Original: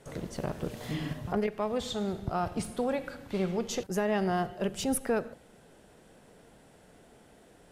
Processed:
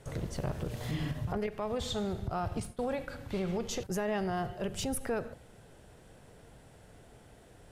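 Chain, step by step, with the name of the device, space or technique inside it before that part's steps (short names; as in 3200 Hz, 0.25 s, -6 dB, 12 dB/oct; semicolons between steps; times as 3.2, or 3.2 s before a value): 2.6–3.08 expander -33 dBFS; car stereo with a boomy subwoofer (resonant low shelf 150 Hz +7 dB, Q 1.5; limiter -25.5 dBFS, peak gain reduction 10 dB)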